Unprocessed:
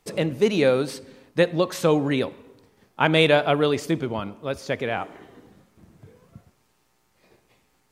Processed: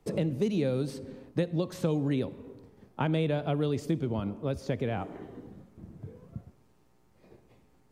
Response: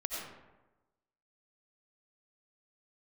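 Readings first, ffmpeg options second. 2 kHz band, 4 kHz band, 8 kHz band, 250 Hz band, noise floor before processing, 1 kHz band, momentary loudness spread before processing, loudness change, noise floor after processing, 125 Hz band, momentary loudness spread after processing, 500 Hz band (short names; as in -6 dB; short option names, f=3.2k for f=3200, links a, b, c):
-16.5 dB, -15.5 dB, -11.5 dB, -5.0 dB, -67 dBFS, -12.0 dB, 13 LU, -8.5 dB, -64 dBFS, -1.5 dB, 19 LU, -10.0 dB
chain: -filter_complex "[0:a]tiltshelf=f=820:g=7.5,acrossover=split=210|2900[a][b][c];[a]acompressor=threshold=-30dB:ratio=4[d];[b]acompressor=threshold=-30dB:ratio=4[e];[c]acompressor=threshold=-44dB:ratio=4[f];[d][e][f]amix=inputs=3:normalize=0,volume=-1.5dB"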